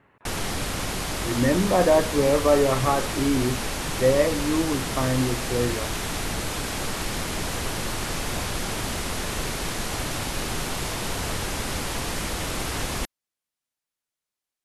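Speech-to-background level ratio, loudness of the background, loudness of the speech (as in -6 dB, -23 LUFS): 5.0 dB, -28.5 LUFS, -23.5 LUFS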